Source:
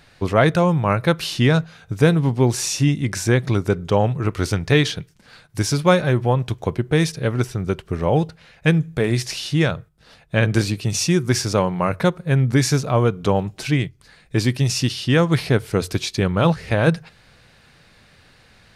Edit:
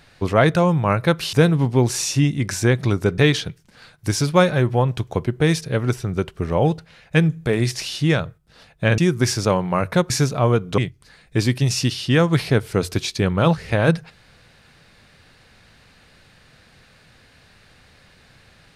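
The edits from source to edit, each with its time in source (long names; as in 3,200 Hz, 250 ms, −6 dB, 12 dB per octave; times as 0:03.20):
0:01.33–0:01.97: remove
0:03.82–0:04.69: remove
0:10.49–0:11.06: remove
0:12.18–0:12.62: remove
0:13.30–0:13.77: remove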